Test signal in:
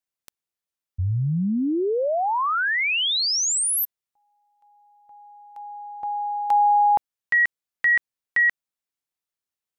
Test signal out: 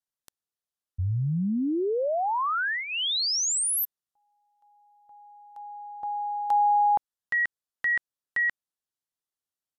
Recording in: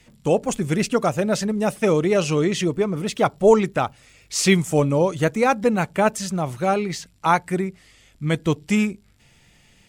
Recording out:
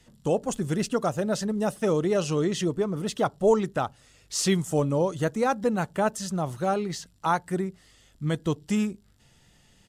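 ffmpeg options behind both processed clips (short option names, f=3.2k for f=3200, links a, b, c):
-filter_complex "[0:a]equalizer=f=2.3k:t=o:w=0.31:g=-11,asplit=2[a][b];[b]alimiter=limit=-15dB:level=0:latency=1:release=367,volume=-2dB[c];[a][c]amix=inputs=2:normalize=0,aresample=32000,aresample=44100,volume=-8.5dB"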